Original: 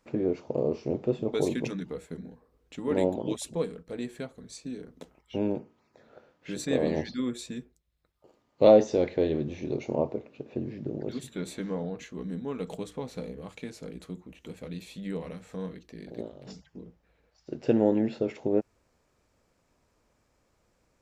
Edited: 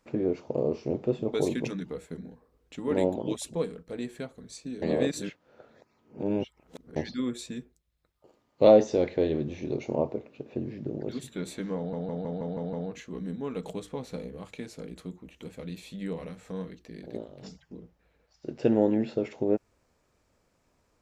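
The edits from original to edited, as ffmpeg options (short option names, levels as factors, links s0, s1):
-filter_complex "[0:a]asplit=9[s0][s1][s2][s3][s4][s5][s6][s7][s8];[s0]atrim=end=4.822[s9];[s1]atrim=start=4.818:end=6.962,asetpts=PTS-STARTPTS,areverse[s10];[s2]atrim=start=6.958:end=11.932[s11];[s3]atrim=start=11.768:end=11.932[s12];[s4]atrim=start=11.768:end=11.932[s13];[s5]atrim=start=11.768:end=11.932[s14];[s6]atrim=start=11.768:end=11.932[s15];[s7]atrim=start=11.768:end=11.932[s16];[s8]atrim=start=11.768[s17];[s9][s10]acrossfade=d=0.004:c1=hsin:c2=hsin[s18];[s18][s11]acrossfade=d=0.004:c1=hsin:c2=hsin[s19];[s19][s12]acrossfade=d=0.004:c1=hsin:c2=hsin[s20];[s20][s13]acrossfade=d=0.004:c1=hsin:c2=hsin[s21];[s21][s14]acrossfade=d=0.004:c1=hsin:c2=hsin[s22];[s22][s15]acrossfade=d=0.004:c1=hsin:c2=hsin[s23];[s23][s16]acrossfade=d=0.004:c1=hsin:c2=hsin[s24];[s24][s17]acrossfade=d=0.004:c1=hsin:c2=hsin"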